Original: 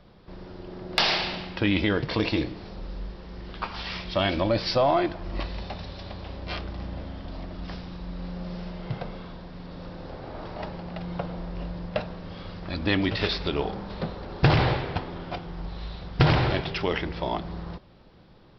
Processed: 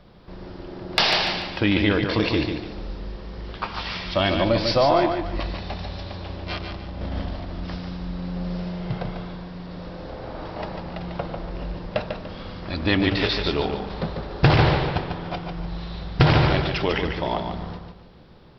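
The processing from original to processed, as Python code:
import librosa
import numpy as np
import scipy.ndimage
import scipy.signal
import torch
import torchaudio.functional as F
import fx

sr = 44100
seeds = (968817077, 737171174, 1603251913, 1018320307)

p1 = fx.over_compress(x, sr, threshold_db=-37.0, ratio=-0.5, at=(6.57, 7.3), fade=0.02)
p2 = p1 + fx.echo_feedback(p1, sr, ms=146, feedback_pct=32, wet_db=-6.0, dry=0)
y = F.gain(torch.from_numpy(p2), 3.0).numpy()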